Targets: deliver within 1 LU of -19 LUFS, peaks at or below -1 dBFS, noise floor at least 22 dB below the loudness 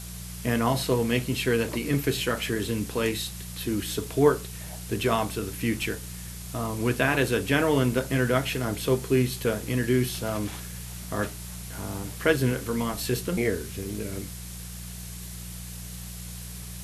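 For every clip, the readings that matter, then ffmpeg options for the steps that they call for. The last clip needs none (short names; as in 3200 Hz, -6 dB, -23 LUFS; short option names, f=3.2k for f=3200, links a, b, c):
hum 60 Hz; harmonics up to 180 Hz; hum level -37 dBFS; noise floor -39 dBFS; noise floor target -49 dBFS; loudness -27.0 LUFS; peak -6.5 dBFS; loudness target -19.0 LUFS
-> -af "bandreject=f=60:t=h:w=4,bandreject=f=120:t=h:w=4,bandreject=f=180:t=h:w=4"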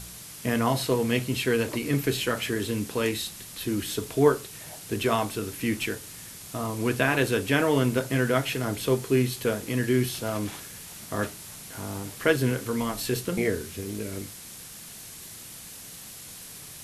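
hum none; noise floor -43 dBFS; noise floor target -49 dBFS
-> -af "afftdn=nr=6:nf=-43"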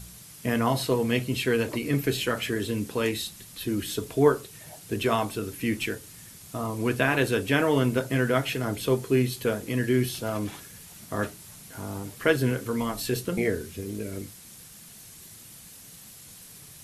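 noise floor -48 dBFS; noise floor target -49 dBFS
-> -af "afftdn=nr=6:nf=-48"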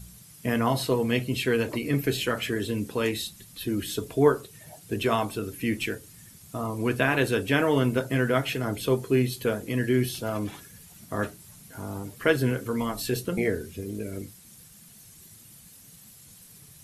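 noise floor -51 dBFS; loudness -27.0 LUFS; peak -6.5 dBFS; loudness target -19.0 LUFS
-> -af "volume=8dB,alimiter=limit=-1dB:level=0:latency=1"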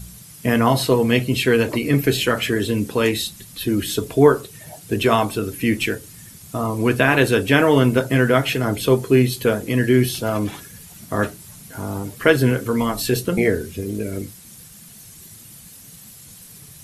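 loudness -19.5 LUFS; peak -1.0 dBFS; noise floor -43 dBFS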